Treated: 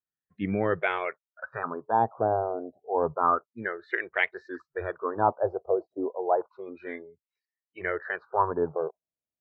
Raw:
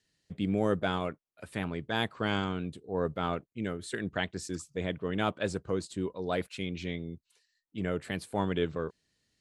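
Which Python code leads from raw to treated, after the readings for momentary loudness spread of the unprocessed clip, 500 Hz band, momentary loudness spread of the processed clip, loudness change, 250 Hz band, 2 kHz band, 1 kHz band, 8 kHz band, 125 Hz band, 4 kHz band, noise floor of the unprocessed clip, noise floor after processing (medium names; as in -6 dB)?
8 LU, +5.0 dB, 13 LU, +4.5 dB, -3.0 dB, +5.5 dB, +10.0 dB, under -30 dB, -5.0 dB, -10.5 dB, -80 dBFS, under -85 dBFS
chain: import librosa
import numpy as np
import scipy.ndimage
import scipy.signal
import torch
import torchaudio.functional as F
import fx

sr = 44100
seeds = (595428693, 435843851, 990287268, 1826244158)

y = fx.filter_lfo_lowpass(x, sr, shape='sine', hz=0.3, low_hz=670.0, high_hz=2200.0, q=5.5)
y = fx.noise_reduce_blind(y, sr, reduce_db=27)
y = scipy.ndimage.gaussian_filter1d(y, 2.0, mode='constant')
y = F.gain(torch.from_numpy(y), 2.0).numpy()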